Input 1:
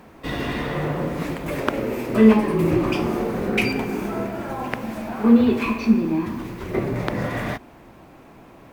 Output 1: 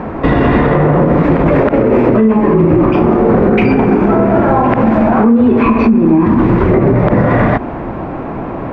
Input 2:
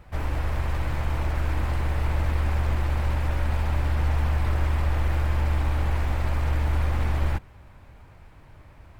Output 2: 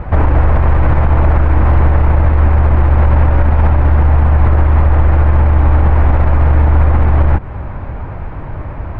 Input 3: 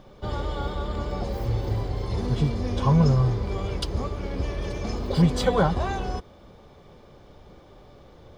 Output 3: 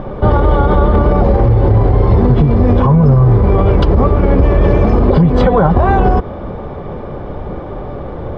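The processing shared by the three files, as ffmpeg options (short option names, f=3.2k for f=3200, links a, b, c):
-af "lowpass=1.4k,acompressor=threshold=-27dB:ratio=10,alimiter=level_in=26.5dB:limit=-1dB:release=50:level=0:latency=1,volume=-1dB"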